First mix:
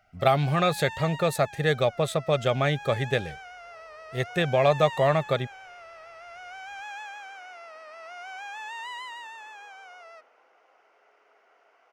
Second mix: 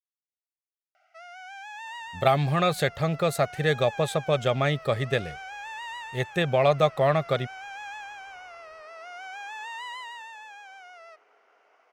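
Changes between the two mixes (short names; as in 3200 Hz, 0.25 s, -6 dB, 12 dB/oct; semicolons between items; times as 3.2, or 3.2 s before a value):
speech: entry +2.00 s; first sound: entry +0.95 s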